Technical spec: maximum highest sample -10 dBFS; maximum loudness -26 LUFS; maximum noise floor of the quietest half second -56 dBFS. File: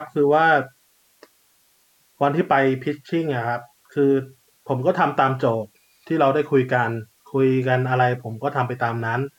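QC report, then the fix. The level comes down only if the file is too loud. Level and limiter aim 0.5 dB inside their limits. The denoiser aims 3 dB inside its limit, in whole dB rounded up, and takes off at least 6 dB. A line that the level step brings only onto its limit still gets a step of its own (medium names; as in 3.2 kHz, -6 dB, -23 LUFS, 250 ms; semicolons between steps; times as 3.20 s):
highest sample -6.0 dBFS: fail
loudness -21.0 LUFS: fail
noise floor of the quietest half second -61 dBFS: pass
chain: trim -5.5 dB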